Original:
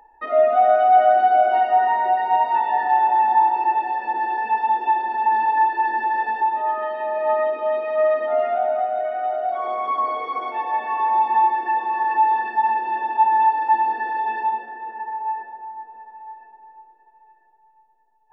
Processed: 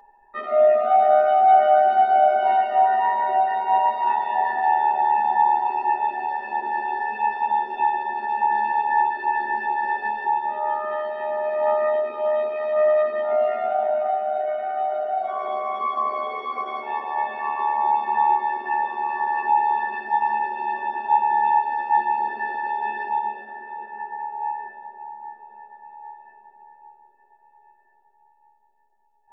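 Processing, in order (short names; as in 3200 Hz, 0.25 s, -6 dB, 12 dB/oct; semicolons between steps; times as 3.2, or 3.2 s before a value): granular stretch 1.6×, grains 27 ms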